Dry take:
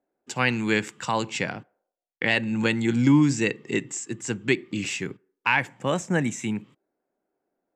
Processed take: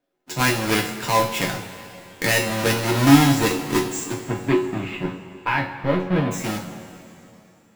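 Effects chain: half-waves squared off; 4.14–6.31 air absorption 460 m; resonator 92 Hz, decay 0.39 s, harmonics all, mix 80%; two-slope reverb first 0.21 s, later 3 s, from -18 dB, DRR -0.5 dB; gain +5.5 dB

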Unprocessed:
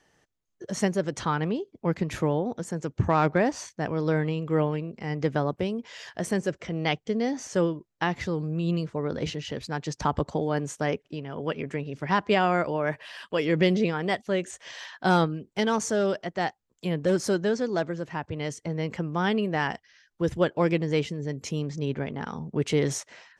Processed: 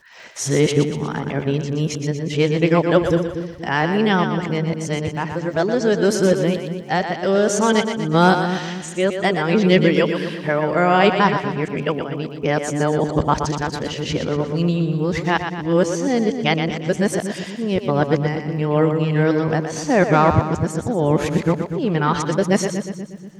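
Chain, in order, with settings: whole clip reversed; split-band echo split 300 Hz, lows 0.24 s, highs 0.12 s, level -7.5 dB; crackle 140/s -55 dBFS; gain +7.5 dB

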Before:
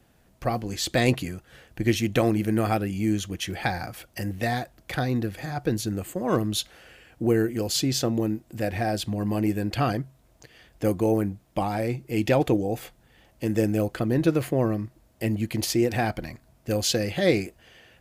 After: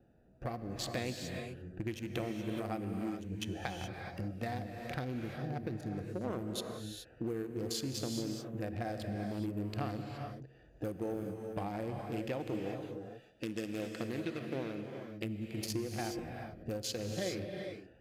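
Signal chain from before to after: Wiener smoothing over 41 samples; 12.82–15.24 weighting filter D; harmonic-percussive split percussive -7 dB; low shelf 240 Hz -10 dB; compressor 5:1, threshold -42 dBFS, peak gain reduction 18.5 dB; non-linear reverb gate 0.45 s rising, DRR 3.5 dB; gain +5 dB

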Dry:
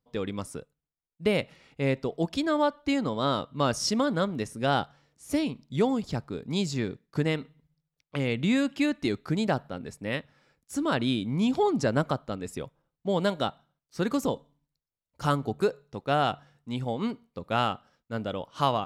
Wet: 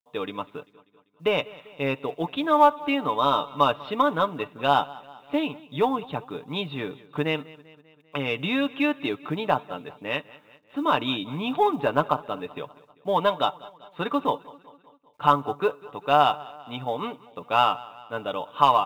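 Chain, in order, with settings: HPF 300 Hz 6 dB/oct; dynamic EQ 980 Hz, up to +4 dB, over -41 dBFS, Q 3.9; rippled Chebyshev low-pass 3800 Hz, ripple 9 dB; in parallel at -7 dB: soft clip -25 dBFS, distortion -11 dB; on the sum: comb 6.8 ms, depth 48%; companded quantiser 8-bit; on a send: feedback echo 0.196 s, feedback 57%, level -21 dB; on the sum: gain +6 dB

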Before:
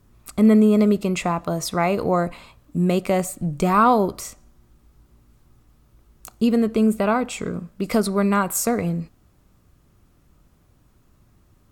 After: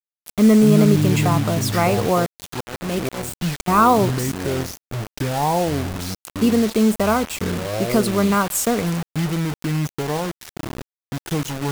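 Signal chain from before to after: echoes that change speed 84 ms, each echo -6 st, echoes 2, each echo -6 dB; 2.26–3.68 auto swell 0.328 s; bit-crush 5-bit; gain +1.5 dB

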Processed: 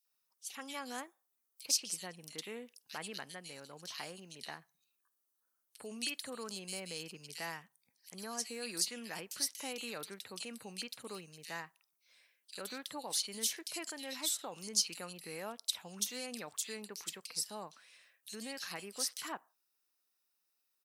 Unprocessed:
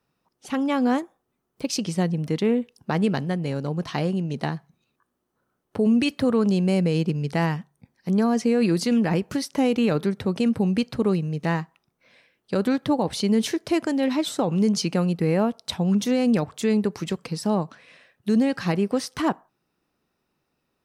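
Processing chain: differentiator; bands offset in time highs, lows 50 ms, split 2700 Hz; gain +1 dB

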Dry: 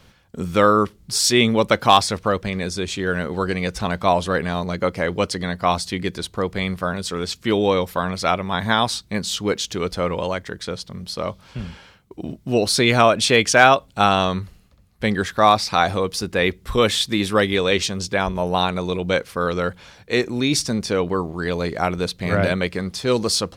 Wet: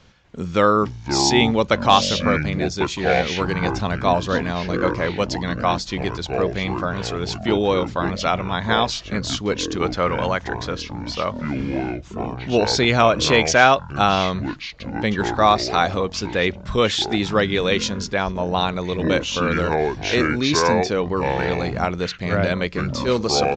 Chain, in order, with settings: 9.79–12.66 dynamic EQ 1400 Hz, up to +7 dB, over -38 dBFS, Q 0.76; echoes that change speed 0.244 s, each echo -7 st, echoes 2, each echo -6 dB; downsampling 16000 Hz; gain -1 dB

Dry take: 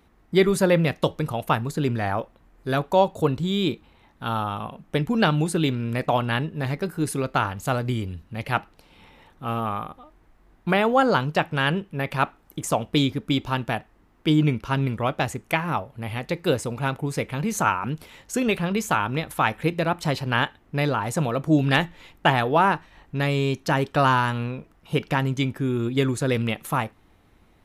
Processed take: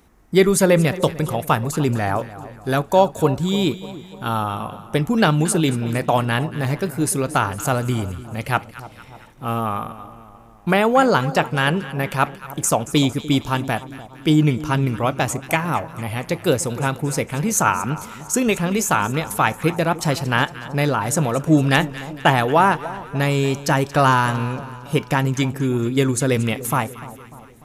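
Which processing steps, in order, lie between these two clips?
resonant high shelf 5000 Hz +6 dB, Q 1.5; split-band echo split 1100 Hz, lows 0.297 s, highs 0.228 s, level -15.5 dB; gain +4 dB

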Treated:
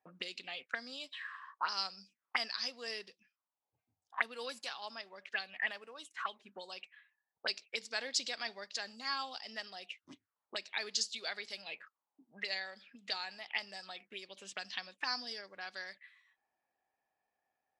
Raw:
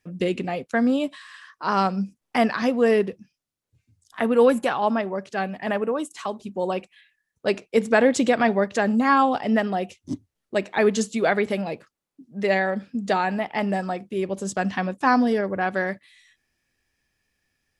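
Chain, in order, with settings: auto-wah 760–4800 Hz, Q 5.3, up, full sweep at -21.5 dBFS; gain +6 dB

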